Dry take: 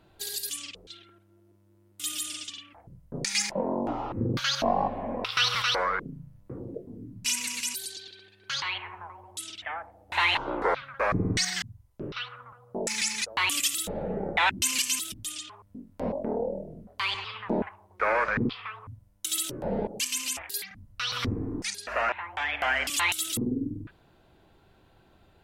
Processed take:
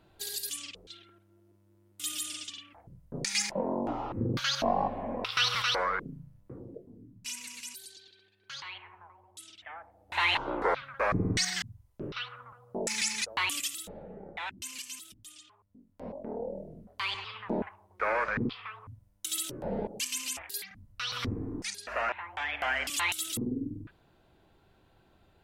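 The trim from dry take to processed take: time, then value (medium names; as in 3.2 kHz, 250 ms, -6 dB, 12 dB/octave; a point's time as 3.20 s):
6.11 s -2.5 dB
7.19 s -11 dB
9.62 s -11 dB
10.31 s -2 dB
13.32 s -2 dB
14.09 s -14.5 dB
15.77 s -14.5 dB
16.65 s -4 dB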